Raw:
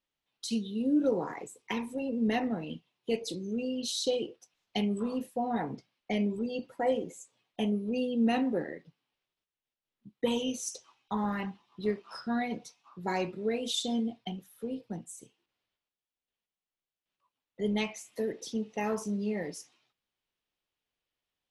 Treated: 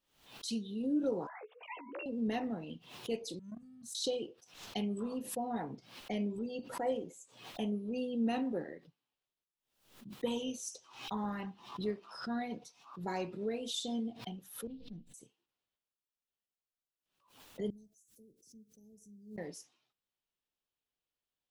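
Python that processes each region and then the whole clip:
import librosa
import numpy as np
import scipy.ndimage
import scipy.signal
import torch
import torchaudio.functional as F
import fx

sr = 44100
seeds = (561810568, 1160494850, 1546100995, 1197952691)

y = fx.chain(x, sr, fx.sine_speech(),
    fx.highpass(hz=1000.0, slope=6),
    fx.doubler(ms=14.0, db=-6), at=(1.27, 2.06))
y = fx.chain(y, sr, fx.cheby1_bandstop(low_hz=190.0, high_hz=7700.0, order=3),
    fx.level_steps(step_db=19),
    fx.leveller(passes=2), at=(3.39, 3.95))
y = fx.chain(y, sr, fx.lower_of_two(delay_ms=4.1),
    fx.curve_eq(hz=(190.0, 1100.0, 3900.0, 7600.0), db=(0, -28, -4, -24)),
    fx.pre_swell(db_per_s=61.0), at=(14.67, 15.14))
y = fx.chain(y, sr, fx.cheby2_bandstop(low_hz=1100.0, high_hz=3300.0, order=4, stop_db=50),
    fx.quant_dither(seeds[0], bits=12, dither='triangular'),
    fx.tone_stack(knobs='6-0-2'), at=(17.7, 19.38))
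y = fx.peak_eq(y, sr, hz=2100.0, db=-4.0, octaves=0.56)
y = fx.pre_swell(y, sr, db_per_s=100.0)
y = F.gain(torch.from_numpy(y), -6.0).numpy()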